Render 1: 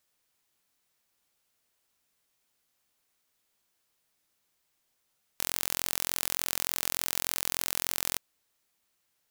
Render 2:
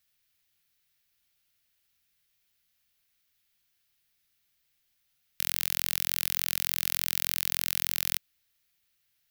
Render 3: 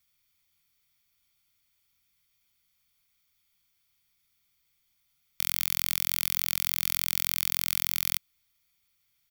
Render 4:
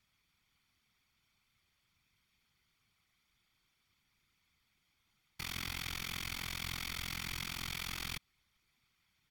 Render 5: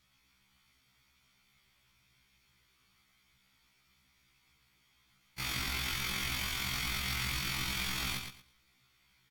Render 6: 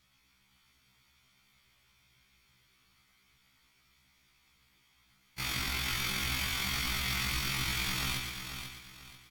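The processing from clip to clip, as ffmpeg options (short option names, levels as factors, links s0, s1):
-af "equalizer=f=250:t=o:w=1:g=-9,equalizer=f=500:t=o:w=1:g=-11,equalizer=f=1000:t=o:w=1:g=-11,equalizer=f=8000:t=o:w=1:g=-8,volume=1.68"
-af "aecho=1:1:0.9:0.54"
-af "aemphasis=mode=reproduction:type=75fm,alimiter=limit=0.0794:level=0:latency=1:release=38,afftfilt=real='hypot(re,im)*cos(2*PI*random(0))':imag='hypot(re,im)*sin(2*PI*random(1))':win_size=512:overlap=0.75,volume=3.55"
-filter_complex "[0:a]asplit=2[s0][s1];[s1]alimiter=level_in=2.51:limit=0.0631:level=0:latency=1,volume=0.398,volume=1.33[s2];[s0][s2]amix=inputs=2:normalize=0,aecho=1:1:114|228|342:0.473|0.104|0.0229,afftfilt=real='re*1.73*eq(mod(b,3),0)':imag='im*1.73*eq(mod(b,3),0)':win_size=2048:overlap=0.75,volume=1.19"
-af "aecho=1:1:490|980|1470|1960:0.398|0.123|0.0383|0.0119,volume=1.19"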